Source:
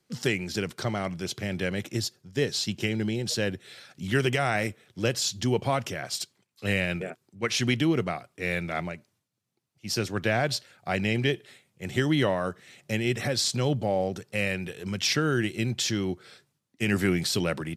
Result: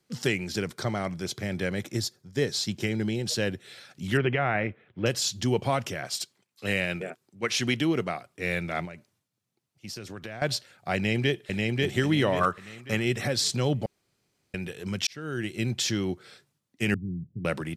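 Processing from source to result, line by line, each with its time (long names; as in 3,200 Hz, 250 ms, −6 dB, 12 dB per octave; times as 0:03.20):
0:00.58–0:03.08: parametric band 2,800 Hz −7.5 dB 0.23 octaves
0:04.17–0:05.06: low-pass filter 2,700 Hz 24 dB per octave
0:06.08–0:08.26: low-shelf EQ 120 Hz −8.5 dB
0:08.85–0:10.42: downward compressor 5 to 1, threshold −36 dBFS
0:10.95–0:11.91: delay throw 540 ms, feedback 35%, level −1.5 dB
0:12.41–0:13.05: parametric band 1,200 Hz +14 dB 0.62 octaves
0:13.86–0:14.54: fill with room tone
0:15.07–0:15.67: fade in
0:16.94–0:17.45: transistor ladder low-pass 230 Hz, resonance 20%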